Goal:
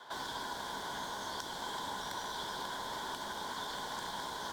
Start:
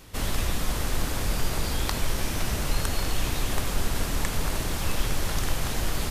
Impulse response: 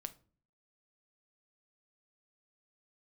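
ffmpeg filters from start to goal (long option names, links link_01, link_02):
-filter_complex "[1:a]atrim=start_sample=2205[link_01];[0:a][link_01]afir=irnorm=-1:irlink=0,asplit=2[link_02][link_03];[link_03]acrusher=samples=17:mix=1:aa=0.000001:lfo=1:lforange=17:lforate=2.9,volume=-7.5dB[link_04];[link_02][link_04]amix=inputs=2:normalize=0,acrossover=split=270|3000[link_05][link_06][link_07];[link_06]acompressor=threshold=-42dB:ratio=6[link_08];[link_05][link_08][link_07]amix=inputs=3:normalize=0,asplit=3[link_09][link_10][link_11];[link_09]bandpass=frequency=730:width_type=q:width=8,volume=0dB[link_12];[link_10]bandpass=frequency=1090:width_type=q:width=8,volume=-6dB[link_13];[link_11]bandpass=frequency=2440:width_type=q:width=8,volume=-9dB[link_14];[link_12][link_13][link_14]amix=inputs=3:normalize=0,lowshelf=frequency=140:gain=-11,bandreject=frequency=7700:width=30,asetrate=59535,aresample=44100,acrossover=split=630|3100[link_15][link_16][link_17];[link_16]alimiter=level_in=26dB:limit=-24dB:level=0:latency=1:release=462,volume=-26dB[link_18];[link_15][link_18][link_17]amix=inputs=3:normalize=0,volume=15.5dB"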